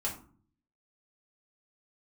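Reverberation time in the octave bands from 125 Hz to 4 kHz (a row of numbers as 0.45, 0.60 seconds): 0.85, 0.70, 0.50, 0.45, 0.30, 0.25 seconds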